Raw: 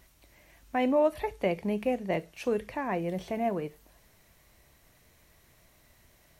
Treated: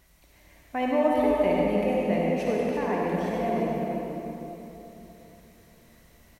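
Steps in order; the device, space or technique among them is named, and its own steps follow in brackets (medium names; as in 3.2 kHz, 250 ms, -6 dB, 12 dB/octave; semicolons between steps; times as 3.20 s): cave (delay 344 ms -9 dB; reverberation RT60 3.3 s, pre-delay 52 ms, DRR -3.5 dB); trim -1.5 dB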